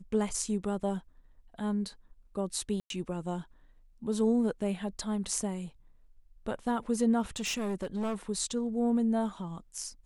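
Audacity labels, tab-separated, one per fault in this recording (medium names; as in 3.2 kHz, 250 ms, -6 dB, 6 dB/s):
2.800000	2.900000	dropout 102 ms
7.360000	8.150000	clipped -29 dBFS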